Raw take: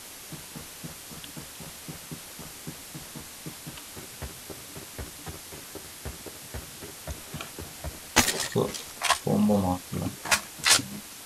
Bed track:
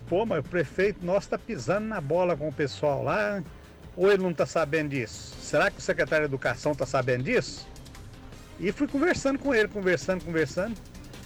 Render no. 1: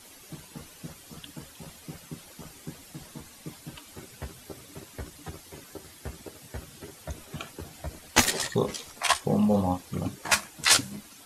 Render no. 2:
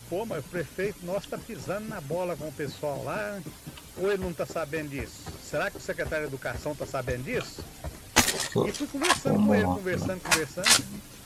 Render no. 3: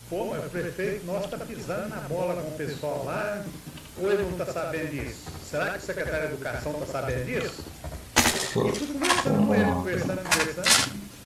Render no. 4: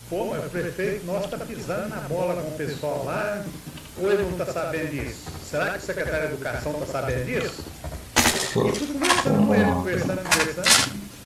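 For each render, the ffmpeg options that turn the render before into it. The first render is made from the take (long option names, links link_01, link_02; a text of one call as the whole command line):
ffmpeg -i in.wav -af "afftdn=noise_reduction=10:noise_floor=-44" out.wav
ffmpeg -i in.wav -i bed.wav -filter_complex "[1:a]volume=-6dB[link_01];[0:a][link_01]amix=inputs=2:normalize=0" out.wav
ffmpeg -i in.wav -filter_complex "[0:a]asplit=2[link_01][link_02];[link_02]adelay=34,volume=-13dB[link_03];[link_01][link_03]amix=inputs=2:normalize=0,asplit=2[link_04][link_05];[link_05]adelay=79,lowpass=frequency=3900:poles=1,volume=-3dB,asplit=2[link_06][link_07];[link_07]adelay=79,lowpass=frequency=3900:poles=1,volume=0.16,asplit=2[link_08][link_09];[link_09]adelay=79,lowpass=frequency=3900:poles=1,volume=0.16[link_10];[link_04][link_06][link_08][link_10]amix=inputs=4:normalize=0" out.wav
ffmpeg -i in.wav -af "volume=3dB,alimiter=limit=-3dB:level=0:latency=1" out.wav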